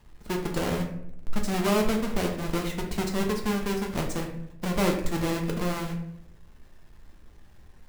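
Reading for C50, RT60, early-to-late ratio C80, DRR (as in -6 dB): 6.5 dB, 0.75 s, 10.0 dB, 1.0 dB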